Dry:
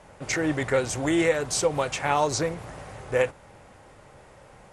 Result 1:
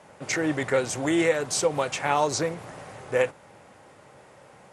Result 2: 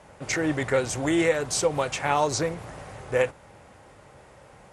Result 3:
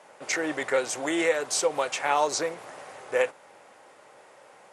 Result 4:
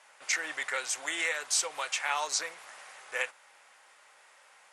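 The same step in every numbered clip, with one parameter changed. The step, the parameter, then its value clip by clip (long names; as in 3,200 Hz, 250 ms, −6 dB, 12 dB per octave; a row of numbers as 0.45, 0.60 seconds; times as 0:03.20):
high-pass filter, corner frequency: 130, 41, 400, 1,400 Hertz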